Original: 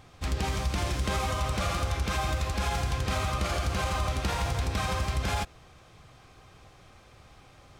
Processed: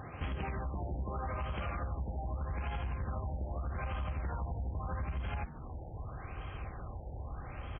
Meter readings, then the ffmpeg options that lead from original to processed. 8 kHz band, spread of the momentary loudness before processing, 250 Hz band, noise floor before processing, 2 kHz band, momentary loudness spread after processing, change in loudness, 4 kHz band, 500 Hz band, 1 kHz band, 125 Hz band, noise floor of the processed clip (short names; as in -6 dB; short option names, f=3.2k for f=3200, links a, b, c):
under -40 dB, 1 LU, -8.0 dB, -55 dBFS, -12.0 dB, 7 LU, -10.0 dB, -20.5 dB, -9.5 dB, -10.0 dB, -6.5 dB, -46 dBFS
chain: -filter_complex "[0:a]highpass=49,asubboost=boost=6.5:cutoff=64,alimiter=limit=-23.5dB:level=0:latency=1:release=172,acompressor=threshold=-45dB:ratio=4,asplit=2[a][b];[b]asplit=4[c][d][e][f];[c]adelay=151,afreqshift=83,volume=-15.5dB[g];[d]adelay=302,afreqshift=166,volume=-21.7dB[h];[e]adelay=453,afreqshift=249,volume=-27.9dB[i];[f]adelay=604,afreqshift=332,volume=-34.1dB[j];[g][h][i][j]amix=inputs=4:normalize=0[k];[a][k]amix=inputs=2:normalize=0,aeval=exprs='clip(val(0),-1,0.0075)':c=same,afftfilt=real='re*lt(b*sr/1024,920*pow(3400/920,0.5+0.5*sin(2*PI*0.81*pts/sr)))':imag='im*lt(b*sr/1024,920*pow(3400/920,0.5+0.5*sin(2*PI*0.81*pts/sr)))':win_size=1024:overlap=0.75,volume=9dB"